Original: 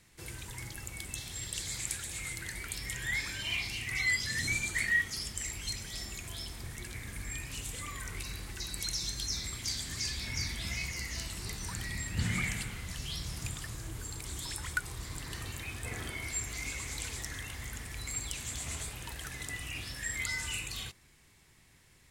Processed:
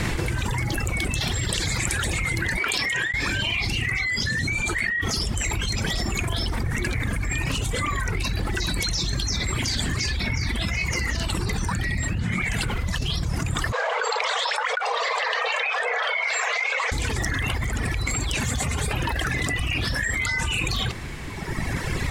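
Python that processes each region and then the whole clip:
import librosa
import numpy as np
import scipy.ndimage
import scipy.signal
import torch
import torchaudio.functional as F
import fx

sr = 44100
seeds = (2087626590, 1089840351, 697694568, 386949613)

y = fx.chain(x, sr, fx.high_shelf(hz=9800.0, db=-9.0),
    fx.over_compress(threshold_db=-41.0, ratio=-0.5),
    fx.highpass(hz=470.0, slope=6), at=(2.57, 3.14))
y = fx.chain(y, sr, fx.brickwall_highpass(low_hz=440.0),
    fx.air_absorb(metres=160.0), at=(13.72, 16.92))
y = fx.chain(y, sr, fx.high_shelf(hz=10000.0, db=6.0),
    fx.notch_comb(f0_hz=330.0), at=(18.44, 18.91))
y = fx.dereverb_blind(y, sr, rt60_s=1.7)
y = fx.lowpass(y, sr, hz=1600.0, slope=6)
y = fx.env_flatten(y, sr, amount_pct=100)
y = y * 10.0 ** (3.0 / 20.0)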